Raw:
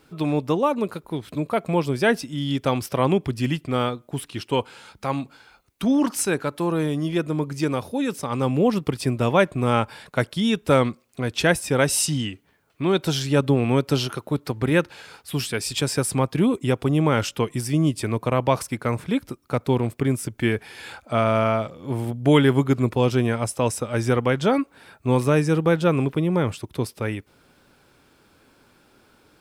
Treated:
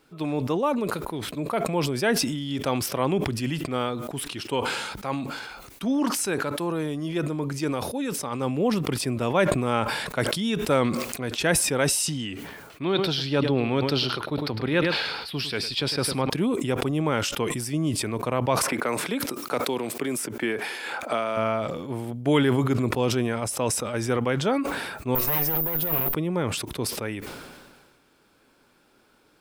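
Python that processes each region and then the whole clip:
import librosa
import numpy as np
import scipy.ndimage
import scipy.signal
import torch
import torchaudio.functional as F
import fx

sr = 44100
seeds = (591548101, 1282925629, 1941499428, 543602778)

y = fx.chain(x, sr, fx.high_shelf_res(hz=5600.0, db=-8.0, q=3.0),
    fx.echo_single(ms=104, db=-14.5), at=(12.84, 16.3))
y = fx.chain(y, sr, fx.highpass(hz=270.0, slope=12),
    fx.band_squash(depth_pct=100), at=(18.63, 21.37))
y = fx.chain(y, sr, fx.lower_of_two(delay_ms=5.5),
    fx.over_compress(threshold_db=-25.0, ratio=-1.0),
    fx.resample_bad(factor=3, down='filtered', up='zero_stuff'), at=(25.15, 26.14))
y = fx.peak_eq(y, sr, hz=79.0, db=-7.0, octaves=1.7)
y = fx.sustainer(y, sr, db_per_s=35.0)
y = y * librosa.db_to_amplitude(-4.0)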